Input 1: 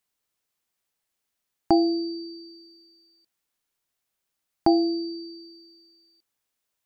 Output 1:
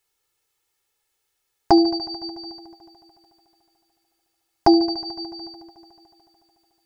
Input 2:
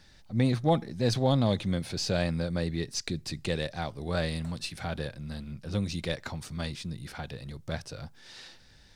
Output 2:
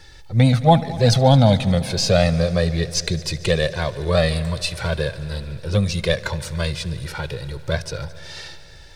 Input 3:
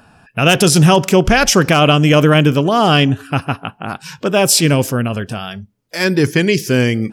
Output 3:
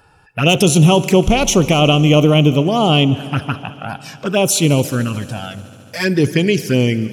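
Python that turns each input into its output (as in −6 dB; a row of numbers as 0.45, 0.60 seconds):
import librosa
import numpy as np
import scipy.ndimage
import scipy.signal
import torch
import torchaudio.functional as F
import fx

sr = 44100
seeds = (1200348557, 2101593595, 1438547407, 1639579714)

y = fx.env_flanger(x, sr, rest_ms=2.3, full_db=-9.0)
y = fx.echo_heads(y, sr, ms=73, heads='all three', feedback_pct=72, wet_db=-24.0)
y = librosa.util.normalize(y) * 10.0 ** (-1.5 / 20.0)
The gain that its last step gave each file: +10.0, +14.0, 0.0 decibels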